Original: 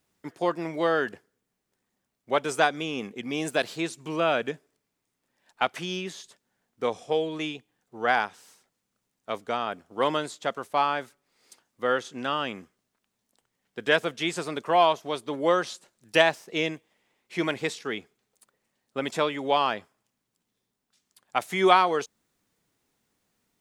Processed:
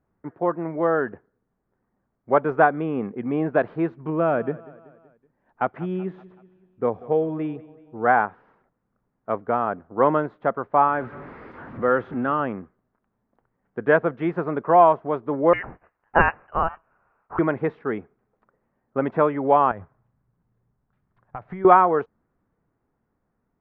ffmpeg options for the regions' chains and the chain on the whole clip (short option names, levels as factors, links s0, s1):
-filter_complex "[0:a]asettb=1/sr,asplit=3[s0][s1][s2];[s0]atrim=end=4.104[s3];[s1]atrim=start=4.1:end=8.06,asetpts=PTS-STARTPTS,afade=t=in:d=0.004:c=qsin,afade=t=out:st=3.956:d=0.004:c=qsin,equalizer=f=1200:t=o:w=2.5:g=-5,aecho=1:1:189|378|567|756:0.1|0.052|0.027|0.0141,atrim=end_sample=174636[s4];[s2]atrim=start=8.056[s5];[s3][s4]acrossfade=d=0.004:c1=hsin:c2=qsin[s6];[s6][s5]acrossfade=d=0.004:c1=qsin:c2=hsin,asettb=1/sr,asplit=3[s7][s8][s9];[s7]atrim=end=10.884[s10];[s8]atrim=start=10.88:end=12.4,asetpts=PTS-STARTPTS,afade=t=in:d=0.004:c=qsin,afade=t=out:st=1.516:d=0.004:c=qsin,aeval=exprs='val(0)+0.5*0.0178*sgn(val(0))':c=same,highpass=61,equalizer=f=710:w=1.1:g=-4[s11];[s9]atrim=start=12.396[s12];[s10][s11]acrossfade=d=0.004:c1=hsin:c2=qsin[s13];[s13][s12]acrossfade=d=0.004:c1=qsin:c2=hsin,asettb=1/sr,asplit=3[s14][s15][s16];[s14]atrim=end=15.534[s17];[s15]atrim=start=15.53:end=17.39,asetpts=PTS-STARTPTS,afade=t=in:d=0.004:c=qsin,afade=t=out:st=1.856:d=0.004:c=qsin,highpass=f=590:w=0.5412,highpass=f=590:w=1.3066,highshelf=f=2600:g=10.5,lowpass=f=2900:t=q:w=0.5098,lowpass=f=2900:t=q:w=0.6013,lowpass=f=2900:t=q:w=0.9,lowpass=f=2900:t=q:w=2.563,afreqshift=-3400[s18];[s16]atrim=start=17.386[s19];[s17][s18]acrossfade=d=0.004:c1=hsin:c2=qsin[s20];[s20][s19]acrossfade=d=0.004:c1=qsin:c2=hsin,asettb=1/sr,asplit=3[s21][s22][s23];[s21]atrim=end=19.714[s24];[s22]atrim=start=19.71:end=21.65,asetpts=PTS-STARTPTS,afade=t=in:d=0.004:c=qsin,afade=t=out:st=1.936:d=0.004:c=qsin,acompressor=threshold=0.0141:ratio=4:attack=3.2:release=140:knee=1:detection=peak,lowshelf=f=180:t=q:w=1.5:g=8[s25];[s23]atrim=start=21.646[s26];[s24][s25]acrossfade=d=0.004:c1=hsin:c2=qsin[s27];[s27][s26]acrossfade=d=0.004:c1=qsin:c2=hsin,lowpass=f=1500:w=0.5412,lowpass=f=1500:w=1.3066,lowshelf=f=100:g=9,dynaudnorm=f=170:g=17:m=1.58,volume=1.33"